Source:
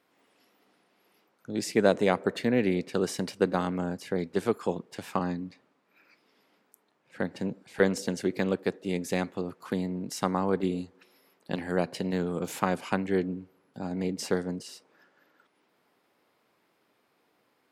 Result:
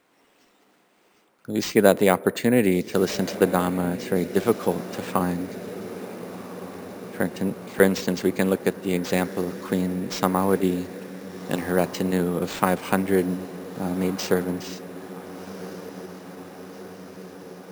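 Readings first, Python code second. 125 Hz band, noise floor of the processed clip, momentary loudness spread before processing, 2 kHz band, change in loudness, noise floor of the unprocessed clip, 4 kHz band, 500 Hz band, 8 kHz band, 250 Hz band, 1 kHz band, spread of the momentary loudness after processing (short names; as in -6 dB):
+6.0 dB, -61 dBFS, 10 LU, +6.0 dB, +6.0 dB, -71 dBFS, +6.0 dB, +6.0 dB, +7.0 dB, +6.0 dB, +6.0 dB, 18 LU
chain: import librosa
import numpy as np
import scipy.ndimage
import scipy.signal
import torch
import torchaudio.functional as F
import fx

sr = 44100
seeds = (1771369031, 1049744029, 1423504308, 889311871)

y = fx.echo_diffused(x, sr, ms=1460, feedback_pct=70, wet_db=-14.5)
y = np.repeat(y[::4], 4)[:len(y)]
y = y * librosa.db_to_amplitude(6.0)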